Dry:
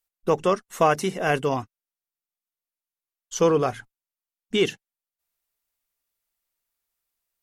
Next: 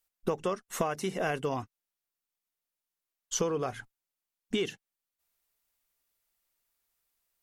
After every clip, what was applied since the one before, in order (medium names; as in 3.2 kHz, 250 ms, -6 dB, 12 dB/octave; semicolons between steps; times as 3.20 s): compression 12:1, threshold -29 dBFS, peak gain reduction 15.5 dB; trim +2 dB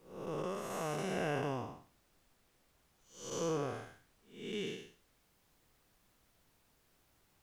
spectral blur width 280 ms; added noise pink -72 dBFS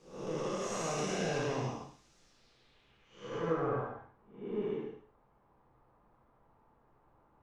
saturation -33.5 dBFS, distortion -13 dB; gated-style reverb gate 180 ms flat, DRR -3 dB; low-pass sweep 6.3 kHz -> 1 kHz, 2.21–3.94 s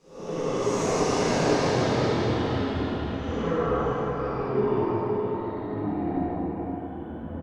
ever faster or slower copies 123 ms, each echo -4 st, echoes 3; delay 520 ms -5.5 dB; plate-style reverb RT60 2.5 s, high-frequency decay 0.5×, DRR -7.5 dB